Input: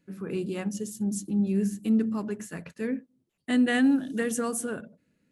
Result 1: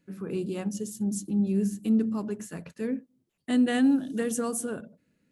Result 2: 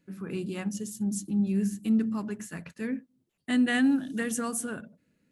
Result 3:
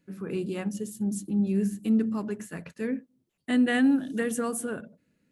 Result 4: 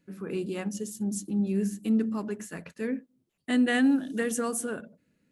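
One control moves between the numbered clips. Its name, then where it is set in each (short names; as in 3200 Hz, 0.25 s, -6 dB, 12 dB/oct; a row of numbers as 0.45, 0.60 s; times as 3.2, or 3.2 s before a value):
dynamic EQ, frequency: 1900, 470, 5900, 120 Hz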